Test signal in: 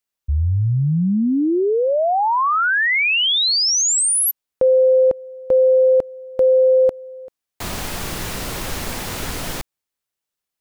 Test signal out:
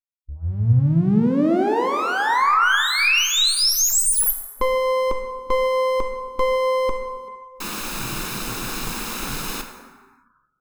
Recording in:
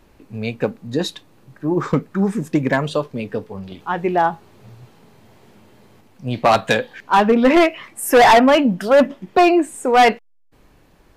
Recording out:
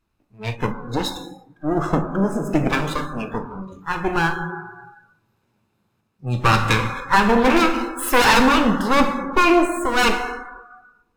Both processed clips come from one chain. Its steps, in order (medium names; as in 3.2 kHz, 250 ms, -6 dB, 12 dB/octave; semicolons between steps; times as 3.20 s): comb filter that takes the minimum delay 0.78 ms; plate-style reverb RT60 1.9 s, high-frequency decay 0.45×, DRR 4 dB; spectral noise reduction 19 dB